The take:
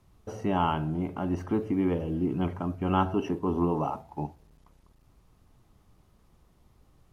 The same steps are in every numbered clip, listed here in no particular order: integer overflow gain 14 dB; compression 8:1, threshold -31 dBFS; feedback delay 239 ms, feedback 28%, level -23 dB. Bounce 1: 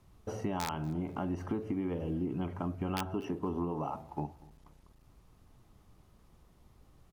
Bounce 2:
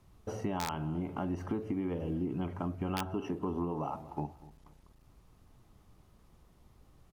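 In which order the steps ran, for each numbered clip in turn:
integer overflow > compression > feedback delay; feedback delay > integer overflow > compression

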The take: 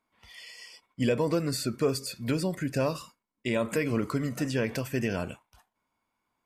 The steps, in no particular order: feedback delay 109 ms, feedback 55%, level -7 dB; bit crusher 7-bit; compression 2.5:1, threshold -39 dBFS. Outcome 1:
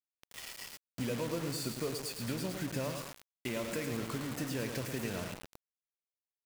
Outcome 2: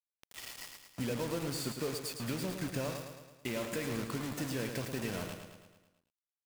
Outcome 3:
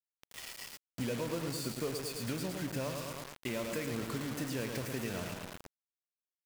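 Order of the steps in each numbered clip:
compression > feedback delay > bit crusher; compression > bit crusher > feedback delay; feedback delay > compression > bit crusher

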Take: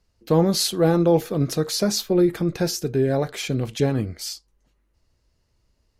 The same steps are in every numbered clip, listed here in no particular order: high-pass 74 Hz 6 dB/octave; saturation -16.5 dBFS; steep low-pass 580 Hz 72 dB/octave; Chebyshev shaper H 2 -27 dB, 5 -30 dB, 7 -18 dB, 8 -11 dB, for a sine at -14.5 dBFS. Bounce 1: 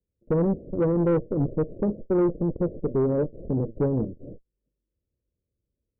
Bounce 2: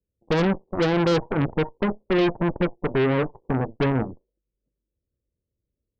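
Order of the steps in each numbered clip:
high-pass > Chebyshev shaper > steep low-pass > saturation; steep low-pass > saturation > high-pass > Chebyshev shaper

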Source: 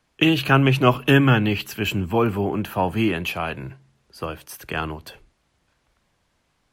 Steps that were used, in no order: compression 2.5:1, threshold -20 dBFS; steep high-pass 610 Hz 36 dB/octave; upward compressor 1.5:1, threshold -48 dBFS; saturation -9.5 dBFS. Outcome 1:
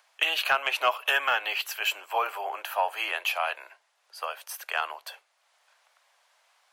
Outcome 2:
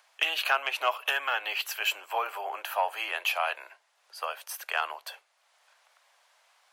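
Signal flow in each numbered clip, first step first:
upward compressor > steep high-pass > compression > saturation; compression > saturation > steep high-pass > upward compressor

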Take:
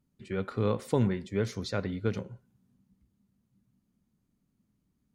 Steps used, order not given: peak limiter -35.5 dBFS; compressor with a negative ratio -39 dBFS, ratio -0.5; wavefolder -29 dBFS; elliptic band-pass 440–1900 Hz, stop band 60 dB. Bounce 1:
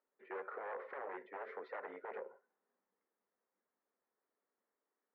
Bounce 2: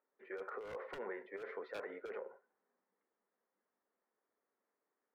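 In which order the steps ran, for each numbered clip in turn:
wavefolder > elliptic band-pass > compressor with a negative ratio > peak limiter; elliptic band-pass > wavefolder > compressor with a negative ratio > peak limiter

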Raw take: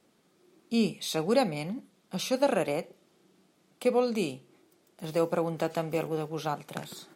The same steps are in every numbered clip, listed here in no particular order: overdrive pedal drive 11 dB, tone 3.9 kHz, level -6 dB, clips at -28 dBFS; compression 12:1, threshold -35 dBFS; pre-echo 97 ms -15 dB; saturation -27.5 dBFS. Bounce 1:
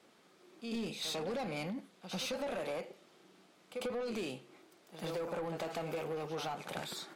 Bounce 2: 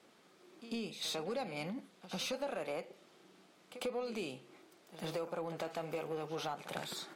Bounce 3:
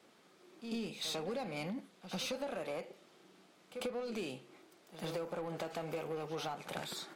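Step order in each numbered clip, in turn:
pre-echo > overdrive pedal > saturation > compression; compression > pre-echo > saturation > overdrive pedal; overdrive pedal > pre-echo > compression > saturation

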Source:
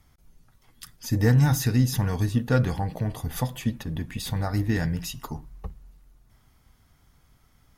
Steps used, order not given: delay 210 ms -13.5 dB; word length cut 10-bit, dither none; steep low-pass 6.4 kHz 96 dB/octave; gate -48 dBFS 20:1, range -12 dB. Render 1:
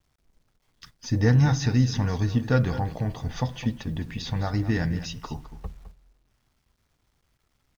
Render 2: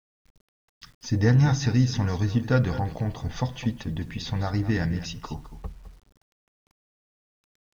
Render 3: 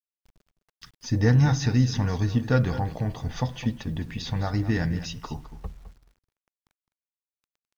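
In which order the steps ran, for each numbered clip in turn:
steep low-pass > word length cut > gate > delay; delay > gate > steep low-pass > word length cut; steep low-pass > gate > word length cut > delay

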